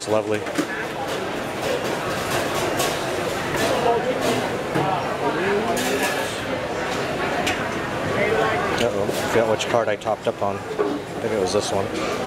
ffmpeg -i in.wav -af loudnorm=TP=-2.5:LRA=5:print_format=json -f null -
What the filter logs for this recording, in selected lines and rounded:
"input_i" : "-22.7",
"input_tp" : "-4.3",
"input_lra" : "1.3",
"input_thresh" : "-32.7",